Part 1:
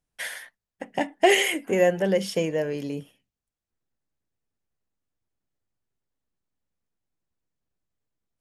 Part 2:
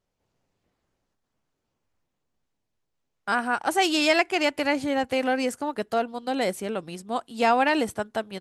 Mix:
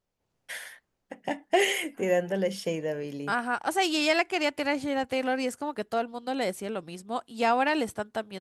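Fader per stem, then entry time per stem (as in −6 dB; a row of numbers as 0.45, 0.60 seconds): −5.0, −3.5 decibels; 0.30, 0.00 seconds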